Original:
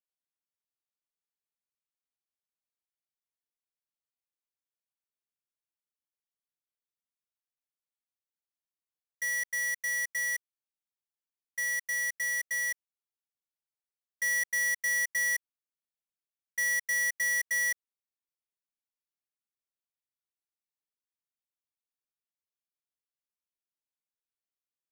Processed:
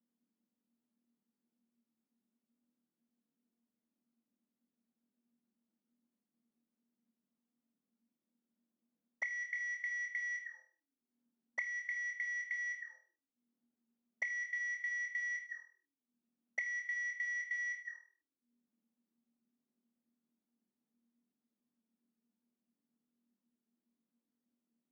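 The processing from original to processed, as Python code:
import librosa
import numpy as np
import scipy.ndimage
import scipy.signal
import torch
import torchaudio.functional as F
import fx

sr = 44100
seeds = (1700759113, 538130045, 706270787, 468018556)

y = scipy.signal.sosfilt(scipy.signal.butter(4, 6700.0, 'lowpass', fs=sr, output='sos'), x)
y = y + 10.0 ** (-19.5 / 20.0) * np.pad(y, (int(236 * sr / 1000.0), 0))[:len(y)]
y = fx.auto_wah(y, sr, base_hz=230.0, top_hz=2200.0, q=21.0, full_db=-34.0, direction='up')
y = fx.notch(y, sr, hz=2400.0, q=20.0)
y = fx.room_flutter(y, sr, wall_m=4.3, rt60_s=0.34)
y = fx.band_squash(y, sr, depth_pct=100)
y = y * 10.0 ** (8.5 / 20.0)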